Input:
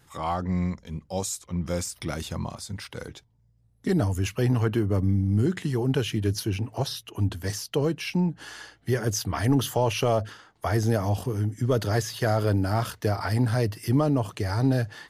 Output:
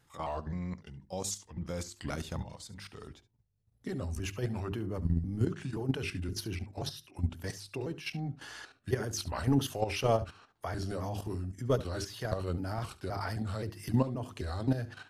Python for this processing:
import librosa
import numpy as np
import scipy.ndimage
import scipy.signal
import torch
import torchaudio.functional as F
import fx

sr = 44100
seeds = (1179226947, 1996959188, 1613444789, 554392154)

y = fx.pitch_trill(x, sr, semitones=-2.5, every_ms=262)
y = fx.high_shelf(y, sr, hz=9200.0, db=-4.0)
y = fx.hum_notches(y, sr, base_hz=50, count=8)
y = fx.level_steps(y, sr, step_db=11)
y = y + 10.0 ** (-17.5 / 20.0) * np.pad(y, (int(71 * sr / 1000.0), 0))[:len(y)]
y = y * librosa.db_to_amplitude(-2.5)